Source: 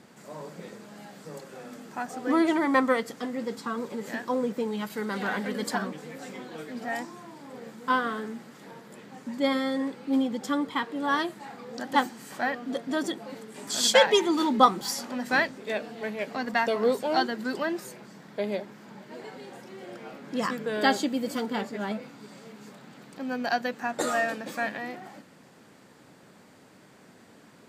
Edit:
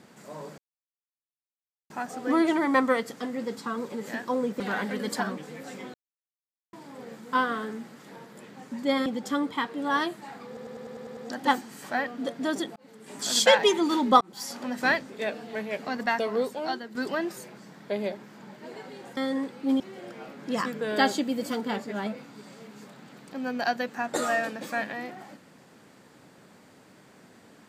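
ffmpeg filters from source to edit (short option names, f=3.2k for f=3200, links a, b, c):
-filter_complex "[0:a]asplit=19[a][b][c][d][e][f][g][h][i][j][k][l][m][n][o][p][q][r][s];[a]atrim=end=0.58,asetpts=PTS-STARTPTS,afade=t=out:st=0.576:d=0.004:c=hsin[t];[b]atrim=start=0.58:end=1.9,asetpts=PTS-STARTPTS,volume=0[u];[c]atrim=start=1.9:end=4.602,asetpts=PTS-STARTPTS,afade=t=in:d=0.004:c=hsin[v];[d]atrim=start=5.148:end=6.49,asetpts=PTS-STARTPTS,afade=t=out:st=1.338:d=0.004:c=hsin[w];[e]atrim=start=6.49:end=7.28,asetpts=PTS-STARTPTS,volume=0[x];[f]atrim=start=7.28:end=9.612,asetpts=PTS-STARTPTS,afade=t=in:d=0.004:c=hsin[y];[g]atrim=start=10.238:end=11.752[z];[h]atrim=start=11.648:end=11.752[aa];[i]atrim=start=11.648:end=11.752[ab];[j]atrim=start=11.648:end=11.752[ac];[k]atrim=start=11.648:end=11.752[ad];[l]atrim=start=11.648:end=11.752[ae];[m]atrim=start=11.648:end=11.752[af];[n]atrim=start=11.648:end=13.24,asetpts=PTS-STARTPTS,afade=t=out:st=1.588:d=0.004:c=hsin[ag];[o]atrim=start=13.24:end=14.69,asetpts=PTS-STARTPTS,afade=t=in:d=0.42,afade=t=out:st=1.446:d=0.004:c=hsin[ah];[p]atrim=start=14.69:end=17.43,asetpts=PTS-STARTPTS,afade=t=in:d=0.41,afade=t=out:st=1.75:d=0.99:silence=0.316228[ai];[q]atrim=start=17.43:end=19.652,asetpts=PTS-STARTPTS,afade=t=in:d=0.004:c=hsin:silence=0.316228[aj];[r]atrim=start=9.608:end=10.242[ak];[s]atrim=start=19.648[al];[t][u][v]concat=n=3:v=0:a=1[am];[w][x][y]concat=n=3:v=0:a=1[an];[am][an]acrossfade=d=0.004:c1=hsin:c2=hsin[ao];[ao][z]acrossfade=d=0.004:c1=hsin:c2=hsin[ap];[ap][aa]acrossfade=d=0.004:c1=hsin:c2=hsin[aq];[aq][ab]acrossfade=d=0.004:c1=hsin:c2=hsin[ar];[ar][ac]acrossfade=d=0.004:c1=hsin:c2=hsin[as];[as][ad]acrossfade=d=0.004:c1=hsin:c2=hsin[at];[at][ae]acrossfade=d=0.004:c1=hsin:c2=hsin[au];[au][af]acrossfade=d=0.004:c1=hsin:c2=hsin[av];[ag][ah][ai][aj]concat=n=4:v=0:a=1[aw];[av][aw]acrossfade=d=0.004:c1=hsin:c2=hsin[ax];[ax][ak]acrossfade=d=0.004:c1=hsin:c2=hsin[ay];[ay][al]acrossfade=d=0.004:c1=hsin:c2=hsin"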